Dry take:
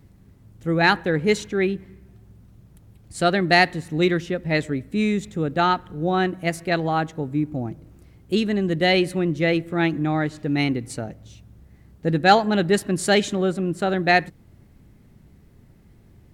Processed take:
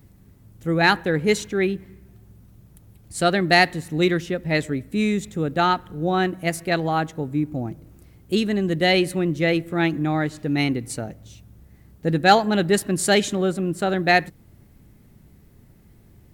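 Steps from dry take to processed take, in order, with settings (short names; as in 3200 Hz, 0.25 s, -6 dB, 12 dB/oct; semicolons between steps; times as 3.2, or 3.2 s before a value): high shelf 10000 Hz +11.5 dB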